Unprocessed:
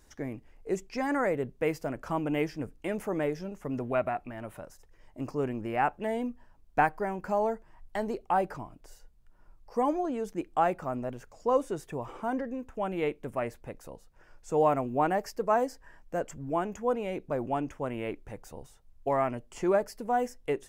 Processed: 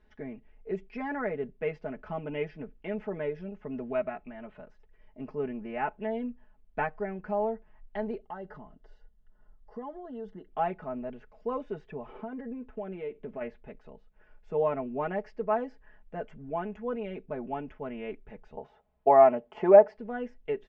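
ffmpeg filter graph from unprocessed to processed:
-filter_complex "[0:a]asettb=1/sr,asplit=3[a][b][c];[a]atrim=end=8.224[d];[b]atrim=start=8.22:end=10.5,asetpts=PTS-STARTPTS,afade=t=in:d=0.004:c=qsin,afade=t=out:st=2.276:d=0.004:c=qsin,acompressor=threshold=-38dB:ratio=2:attack=3.2:release=140:knee=1:detection=peak,asuperstop=centerf=2400:order=8:qfactor=3.8[e];[c]atrim=start=10.496[f];[d][e]acrossfade=d=0.004:c1=hsin:c2=qsin[g];[g][f]acrossfade=d=0.004:c1=qsin:c2=hsin,asettb=1/sr,asplit=3[h][i][j];[h]atrim=end=12.124[k];[i]atrim=start=12.12:end=13.41,asetpts=PTS-STARTPTS,afade=t=in:d=0.004:c=qsin,afade=t=out:st=1.286:d=0.004:c=qsin,equalizer=f=400:w=0.75:g=5.5,acompressor=threshold=-31dB:ratio=6:attack=3.2:release=140:knee=1:detection=peak[l];[j]atrim=start=13.406[m];[k][l]acrossfade=d=0.004:c1=hsin:c2=qsin[n];[n][m]acrossfade=d=0.004:c1=qsin:c2=hsin,asettb=1/sr,asplit=3[o][p][q];[o]atrim=end=18.574[r];[p]atrim=start=18.57:end=19.98,asetpts=PTS-STARTPTS,afade=t=in:d=0.004:c=qsin,afade=t=out:st=1.406:d=0.004:c=qsin,highpass=72,equalizer=f=740:w=0.7:g=15[s];[q]atrim=start=19.976[t];[r][s]acrossfade=d=0.004:c1=hsin:c2=qsin[u];[u][t]acrossfade=d=0.004:c1=qsin:c2=hsin,lowpass=f=3.2k:w=0.5412,lowpass=f=3.2k:w=1.3066,equalizer=f=1.1k:w=2.7:g=-4.5,aecho=1:1:4.7:0.83,volume=-5.5dB"

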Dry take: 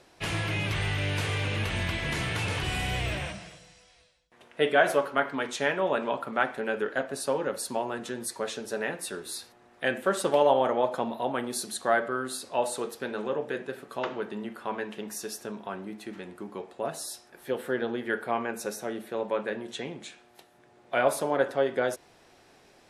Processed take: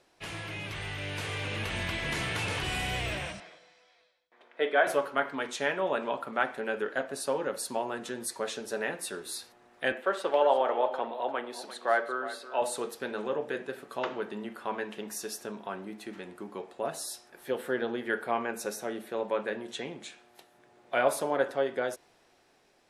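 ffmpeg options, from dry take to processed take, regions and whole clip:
-filter_complex "[0:a]asettb=1/sr,asplit=3[a][b][c];[a]atrim=end=3.404[d];[b]atrim=start=3.4:end=4.87,asetpts=PTS-STARTPTS,afade=t=in:d=0.004:c=qsin,afade=t=out:st=1.466:d=0.004:c=qsin,acrossover=split=250 4400:gain=0.0794 1 0.112[e][f][g];[e][f][g]amix=inputs=3:normalize=0,bandreject=f=2.8k:w=8.4[h];[c]atrim=start=4.866[i];[d][h]acrossfade=d=0.004:c1=hsin:c2=qsin[j];[j][i]acrossfade=d=0.004:c1=qsin:c2=hsin,asettb=1/sr,asplit=3[k][l][m];[k]atrim=end=9.924[n];[l]atrim=start=9.92:end=12.62,asetpts=PTS-STARTPTS,afade=t=in:d=0.004:c=qsin,afade=t=out:st=2.696:d=0.004:c=qsin,acrossover=split=320 4100:gain=0.158 1 0.178[o][p][q];[o][p][q]amix=inputs=3:normalize=0,aecho=1:1:347:0.211,atrim=end_sample=119070[r];[m]atrim=start=12.616[s];[n][r]acrossfade=d=0.004:c1=hsin:c2=qsin[t];[t][s]acrossfade=d=0.004:c1=qsin:c2=hsin,equalizer=f=85:t=o:w=2.6:g=-5,dynaudnorm=f=250:g=11:m=7dB,volume=-7.5dB"

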